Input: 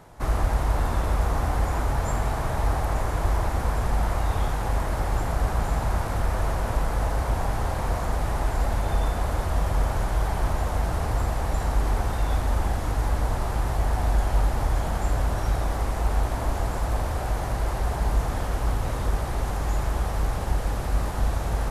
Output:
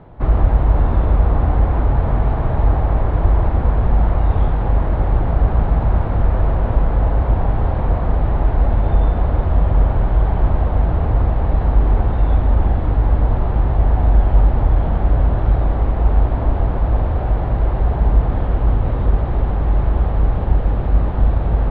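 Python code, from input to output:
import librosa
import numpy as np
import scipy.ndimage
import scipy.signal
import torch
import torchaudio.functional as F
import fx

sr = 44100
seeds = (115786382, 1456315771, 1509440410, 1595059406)

y = scipy.signal.sosfilt(scipy.signal.butter(6, 3700.0, 'lowpass', fs=sr, output='sos'), x)
y = fx.tilt_shelf(y, sr, db=7.0, hz=910.0)
y = y * 10.0 ** (3.0 / 20.0)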